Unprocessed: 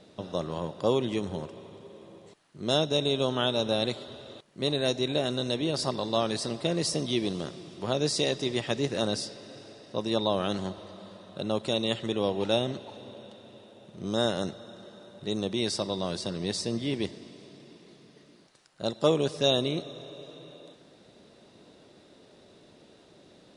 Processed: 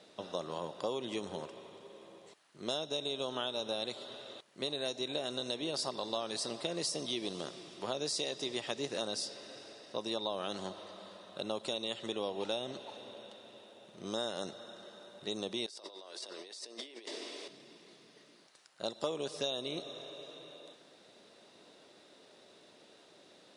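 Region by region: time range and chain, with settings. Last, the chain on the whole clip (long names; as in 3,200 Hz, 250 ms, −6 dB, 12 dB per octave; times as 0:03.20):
0:15.66–0:17.48: high-pass filter 320 Hz 24 dB per octave + compressor whose output falls as the input rises −45 dBFS
whole clip: high-pass filter 640 Hz 6 dB per octave; dynamic equaliser 1,900 Hz, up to −4 dB, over −48 dBFS, Q 1.2; downward compressor, threshold −32 dBFS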